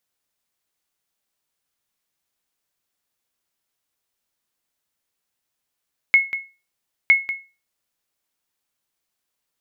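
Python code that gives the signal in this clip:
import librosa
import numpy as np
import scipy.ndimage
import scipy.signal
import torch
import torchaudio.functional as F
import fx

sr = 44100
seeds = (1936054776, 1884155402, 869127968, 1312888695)

y = fx.sonar_ping(sr, hz=2180.0, decay_s=0.3, every_s=0.96, pings=2, echo_s=0.19, echo_db=-12.5, level_db=-6.0)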